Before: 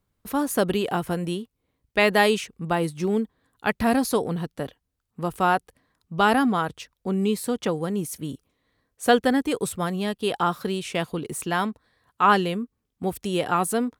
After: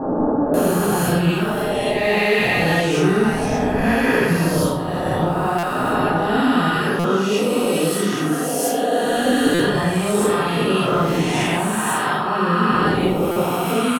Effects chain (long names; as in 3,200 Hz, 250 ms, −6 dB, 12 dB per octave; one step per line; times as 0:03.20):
peak hold with a rise ahead of every peak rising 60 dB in 2.06 s
0:06.74–0:09.05: high-pass filter 250 Hz 12 dB per octave
downward compressor 4 to 1, threshold −26 dBFS, peak gain reduction 13.5 dB
multiband delay without the direct sound lows, highs 540 ms, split 1,000 Hz
convolution reverb RT60 0.65 s, pre-delay 8 ms, DRR −7 dB
buffer that repeats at 0:05.58/0:06.99/0:09.54/0:13.31, samples 256, times 8